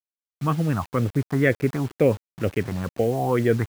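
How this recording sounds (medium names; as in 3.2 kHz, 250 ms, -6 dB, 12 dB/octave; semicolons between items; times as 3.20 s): phasing stages 4, 2.1 Hz, lowest notch 460–1000 Hz; a quantiser's noise floor 8-bit, dither none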